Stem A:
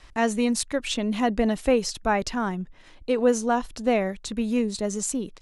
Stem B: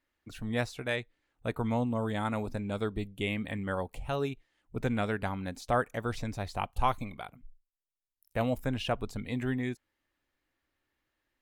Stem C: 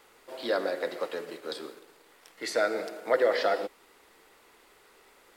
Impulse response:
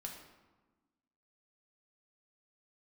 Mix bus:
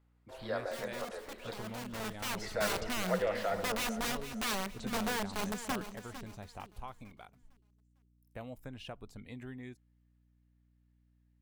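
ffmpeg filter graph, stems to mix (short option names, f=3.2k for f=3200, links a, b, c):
-filter_complex "[0:a]bass=f=250:g=3,treble=f=4k:g=-12,aeval=exprs='(mod(10.6*val(0)+1,2)-1)/10.6':c=same,adelay=550,volume=-9.5dB,afade=t=in:st=1.88:d=0.58:silence=0.266073,asplit=3[a][b][c];[b]volume=-17dB[d];[c]volume=-11.5dB[e];[1:a]acompressor=threshold=-30dB:ratio=4,volume=-11dB[f];[2:a]highpass=560,agate=range=-16dB:threshold=-51dB:ratio=16:detection=peak,highshelf=f=2.3k:g=-11,volume=-4.5dB,asplit=2[g][h];[h]volume=-12.5dB[i];[3:a]atrim=start_sample=2205[j];[d][j]afir=irnorm=-1:irlink=0[k];[e][i]amix=inputs=2:normalize=0,aecho=0:1:453|906|1359|1812|2265:1|0.36|0.13|0.0467|0.0168[l];[a][f][g][k][l]amix=inputs=5:normalize=0,aeval=exprs='val(0)+0.000398*(sin(2*PI*60*n/s)+sin(2*PI*2*60*n/s)/2+sin(2*PI*3*60*n/s)/3+sin(2*PI*4*60*n/s)/4+sin(2*PI*5*60*n/s)/5)':c=same"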